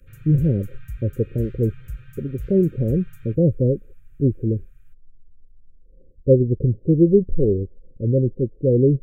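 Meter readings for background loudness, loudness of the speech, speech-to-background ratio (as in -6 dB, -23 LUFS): -40.0 LUFS, -21.0 LUFS, 19.0 dB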